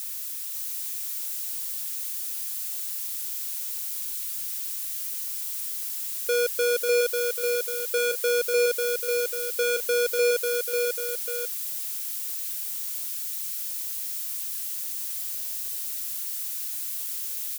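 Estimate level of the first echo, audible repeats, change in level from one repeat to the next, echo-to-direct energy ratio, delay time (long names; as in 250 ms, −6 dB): −3.5 dB, 2, −6.5 dB, −2.5 dB, 544 ms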